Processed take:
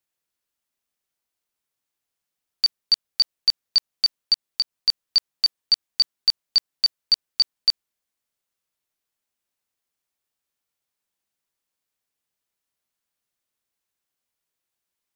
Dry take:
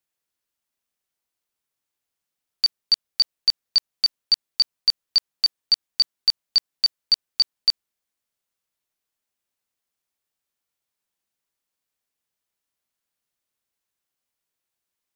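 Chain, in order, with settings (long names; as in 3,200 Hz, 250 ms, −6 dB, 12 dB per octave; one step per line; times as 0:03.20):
0:04.33–0:04.89: downward compressor, threshold −19 dBFS, peak gain reduction 6 dB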